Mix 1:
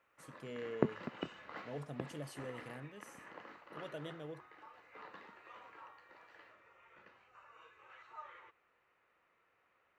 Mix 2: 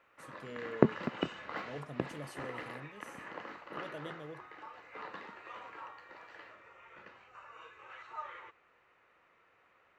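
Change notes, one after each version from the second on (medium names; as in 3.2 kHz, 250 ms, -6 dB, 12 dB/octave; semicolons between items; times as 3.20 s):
background +7.5 dB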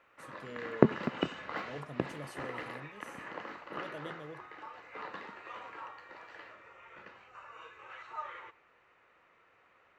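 reverb: on, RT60 0.50 s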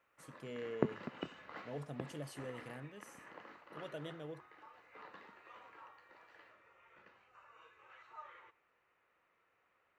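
background -11.0 dB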